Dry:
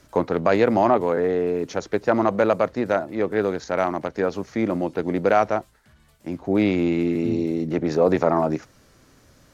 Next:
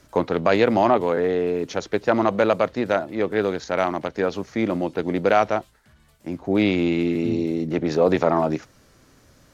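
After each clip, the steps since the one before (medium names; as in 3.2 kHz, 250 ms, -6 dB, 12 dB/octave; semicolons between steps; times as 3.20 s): dynamic bell 3.3 kHz, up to +7 dB, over -46 dBFS, Q 1.4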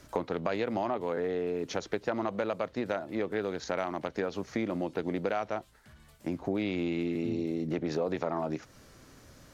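compression 5:1, threshold -29 dBFS, peak gain reduction 15 dB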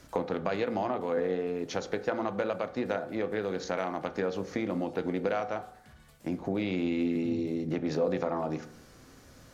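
reverberation RT60 0.70 s, pre-delay 3 ms, DRR 8.5 dB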